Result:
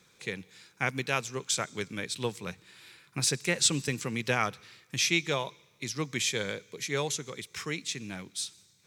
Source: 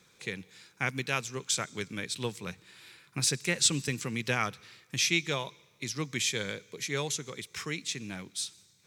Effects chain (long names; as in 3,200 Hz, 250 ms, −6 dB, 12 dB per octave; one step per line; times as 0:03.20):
dynamic equaliser 670 Hz, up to +4 dB, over −42 dBFS, Q 0.76